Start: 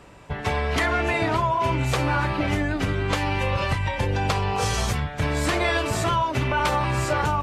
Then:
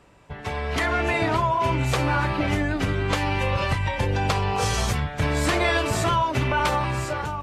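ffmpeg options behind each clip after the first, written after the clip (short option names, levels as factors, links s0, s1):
-af "dynaudnorm=f=130:g=11:m=2.82,volume=0.447"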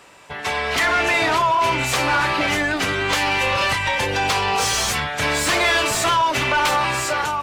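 -filter_complex "[0:a]crystalizer=i=3.5:c=0,asplit=2[s0][s1];[s1]highpass=f=720:p=1,volume=10,asoftclip=type=tanh:threshold=0.596[s2];[s0][s2]amix=inputs=2:normalize=0,lowpass=f=3200:p=1,volume=0.501,volume=0.596"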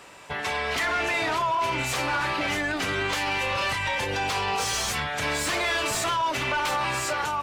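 -af "alimiter=limit=0.1:level=0:latency=1:release=307"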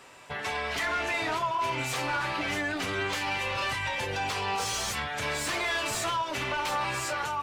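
-af "flanger=delay=7.7:depth=2.8:regen=-47:speed=0.53:shape=sinusoidal"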